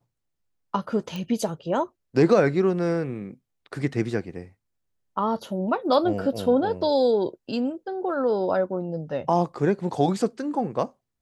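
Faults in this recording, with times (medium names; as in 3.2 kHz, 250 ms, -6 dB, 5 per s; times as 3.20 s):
1.16 s: pop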